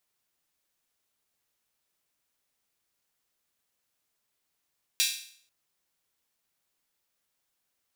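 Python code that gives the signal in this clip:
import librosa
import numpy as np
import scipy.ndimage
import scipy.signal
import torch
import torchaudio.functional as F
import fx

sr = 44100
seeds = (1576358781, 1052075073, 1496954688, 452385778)

y = fx.drum_hat_open(sr, length_s=0.49, from_hz=3100.0, decay_s=0.56)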